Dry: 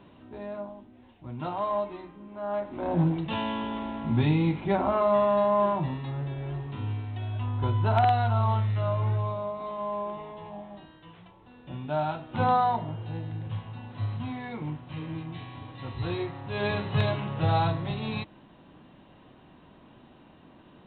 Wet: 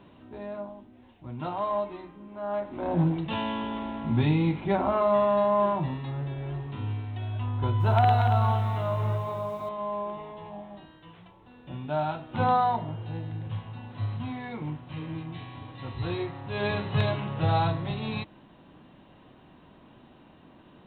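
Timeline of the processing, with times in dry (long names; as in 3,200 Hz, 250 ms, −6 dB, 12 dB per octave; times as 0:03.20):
0:07.57–0:09.69: feedback echo at a low word length 232 ms, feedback 35%, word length 9 bits, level −7 dB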